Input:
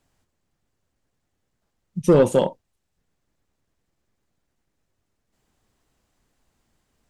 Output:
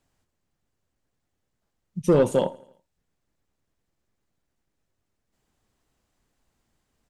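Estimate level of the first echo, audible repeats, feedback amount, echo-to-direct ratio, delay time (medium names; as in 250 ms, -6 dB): -23.0 dB, 3, 53%, -21.5 dB, 83 ms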